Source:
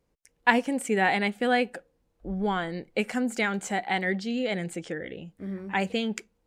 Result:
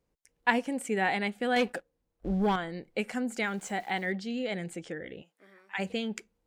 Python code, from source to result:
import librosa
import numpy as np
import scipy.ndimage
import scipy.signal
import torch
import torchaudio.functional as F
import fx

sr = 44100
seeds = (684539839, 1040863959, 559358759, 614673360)

y = fx.leveller(x, sr, passes=2, at=(1.56, 2.56))
y = fx.sample_gate(y, sr, floor_db=-47.0, at=(3.43, 4.12))
y = fx.highpass(y, sr, hz=fx.line((5.21, 590.0), (5.78, 1300.0)), slope=12, at=(5.21, 5.78), fade=0.02)
y = y * 10.0 ** (-4.5 / 20.0)